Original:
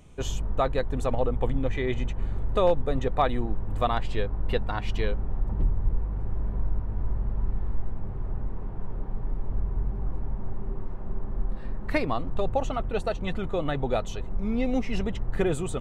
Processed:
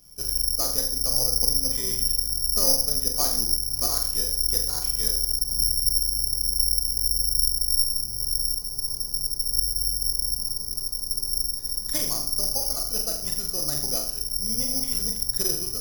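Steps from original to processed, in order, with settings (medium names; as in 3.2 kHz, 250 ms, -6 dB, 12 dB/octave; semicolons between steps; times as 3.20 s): harmony voices -12 st -8 dB; flutter echo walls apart 7.1 m, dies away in 0.55 s; careless resampling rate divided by 8×, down filtered, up zero stuff; trim -12 dB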